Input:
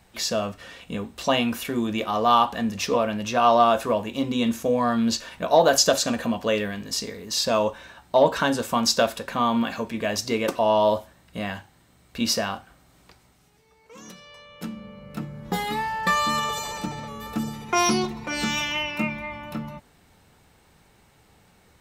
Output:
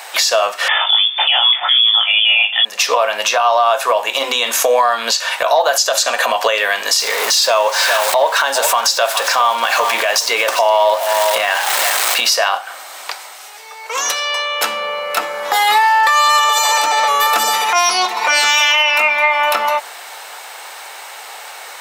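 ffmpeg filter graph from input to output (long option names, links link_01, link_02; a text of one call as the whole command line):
ffmpeg -i in.wav -filter_complex "[0:a]asettb=1/sr,asplit=3[link_01][link_02][link_03];[link_01]atrim=end=0.684[link_04];[link_02]atrim=start=0.68:end=2.65,asetpts=PTS-STARTPTS,afade=type=in:duration=0.004:curve=qsin,afade=type=out:start_time=1.966:duration=0.004:curve=qsin,lowshelf=frequency=130:gain=11,asplit=2[link_05][link_06];[link_06]adelay=18,volume=-3.5dB[link_07];[link_05][link_07]amix=inputs=2:normalize=0,atrim=end_sample=86877,lowpass=frequency=3100:width_type=q:width=0.5098,lowpass=frequency=3100:width_type=q:width=0.6013,lowpass=frequency=3100:width_type=q:width=0.9,lowpass=frequency=3100:width_type=q:width=2.563,afreqshift=-3600[link_08];[link_03]atrim=start=2.646[link_09];[link_04][link_08]acrossfade=duration=0.004:curve1=hsin:curve2=qsin[link_10];[link_10][link_09]acrossfade=duration=0.004:curve1=qsin:curve2=hsin,asettb=1/sr,asplit=3[link_11][link_12][link_13];[link_11]atrim=end=6.994[link_14];[link_12]atrim=start=6.99:end=12.3,asetpts=PTS-STARTPTS,afade=type=in:duration=0.004:curve=qsin,afade=type=out:start_time=5.306:duration=0.004:curve=qsin,aeval=exprs='val(0)+0.5*0.0188*sgn(val(0))':channel_layout=same,aecho=1:1:411:0.158,atrim=end_sample=234171[link_15];[link_13]atrim=start=12.296[link_16];[link_14][link_15]acrossfade=duration=0.004:curve1=hsin:curve2=qsin[link_17];[link_17][link_16]acrossfade=duration=0.004:curve1=qsin:curve2=hsin,highpass=frequency=640:width=0.5412,highpass=frequency=640:width=1.3066,acompressor=threshold=-39dB:ratio=6,alimiter=level_in=32dB:limit=-1dB:release=50:level=0:latency=1,volume=-3dB" out.wav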